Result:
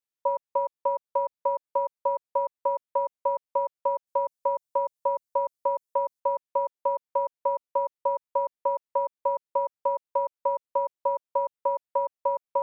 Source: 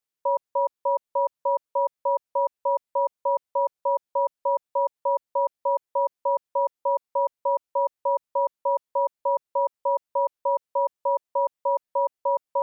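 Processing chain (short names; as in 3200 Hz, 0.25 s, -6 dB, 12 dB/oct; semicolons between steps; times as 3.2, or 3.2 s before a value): 4.07–6.2 tone controls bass +4 dB, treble +9 dB; transient shaper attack +7 dB, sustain -2 dB; gain -6 dB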